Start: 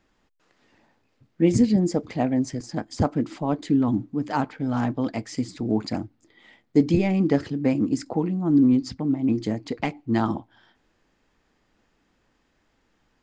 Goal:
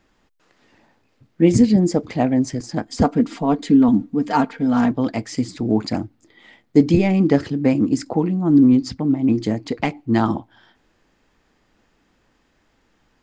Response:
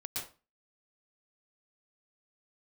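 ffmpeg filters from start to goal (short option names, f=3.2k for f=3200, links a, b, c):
-filter_complex "[0:a]asettb=1/sr,asplit=3[a][b][c];[a]atrim=end=2.874[d];[b]atrim=start=2.87:end=4.91,asetpts=PTS-STARTPTS,afade=t=in:d=0.004:c=qsin,afade=t=out:st=2.036:d=0.004:c=qsin,aecho=1:1:4.3:0.6,atrim=end_sample=89964[e];[c]atrim=start=4.906[f];[d][e]acrossfade=d=0.004:c1=hsin:c2=qsin[g];[g][f]acrossfade=d=0.004:c1=qsin:c2=hsin,volume=5dB"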